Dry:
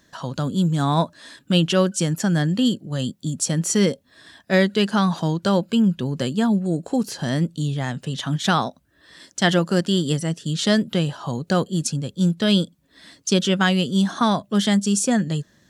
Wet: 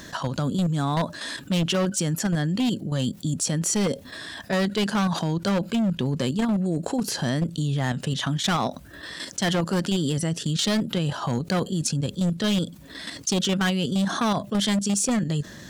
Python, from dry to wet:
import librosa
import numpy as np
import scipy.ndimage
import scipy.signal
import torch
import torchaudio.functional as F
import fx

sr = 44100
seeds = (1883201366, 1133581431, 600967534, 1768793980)

y = fx.level_steps(x, sr, step_db=9)
y = np.clip(10.0 ** (20.0 / 20.0) * y, -1.0, 1.0) / 10.0 ** (20.0 / 20.0)
y = fx.env_flatten(y, sr, amount_pct=50)